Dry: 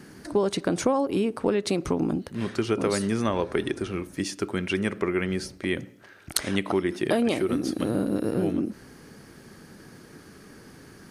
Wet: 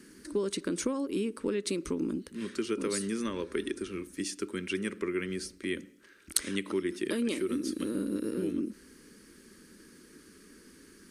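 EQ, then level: peaking EQ 8.6 kHz +6 dB 0.59 oct; static phaser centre 300 Hz, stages 4; -5.0 dB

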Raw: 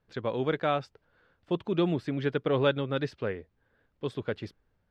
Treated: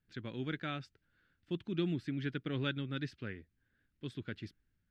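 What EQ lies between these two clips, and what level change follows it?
high-order bell 700 Hz -14 dB; -5.5 dB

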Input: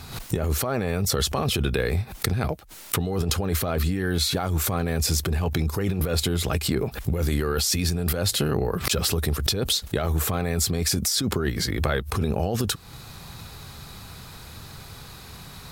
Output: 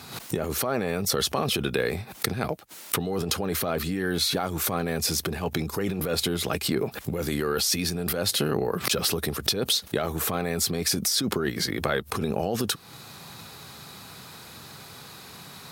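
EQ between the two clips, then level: high-pass 170 Hz 12 dB/octave; dynamic bell 7.4 kHz, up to -6 dB, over -49 dBFS, Q 7.5; 0.0 dB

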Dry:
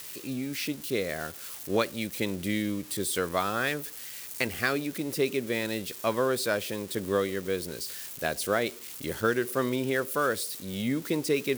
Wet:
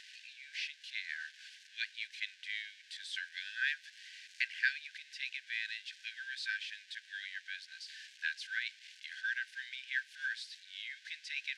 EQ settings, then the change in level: brick-wall FIR high-pass 1.5 kHz; tape spacing loss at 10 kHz 45 dB; peaking EQ 1.9 kHz -9.5 dB 1.2 oct; +14.5 dB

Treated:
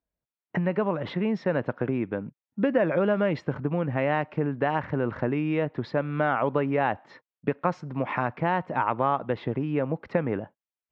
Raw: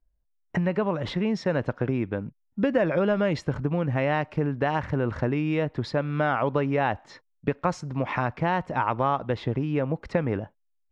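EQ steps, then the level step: band-pass 140–2900 Hz; 0.0 dB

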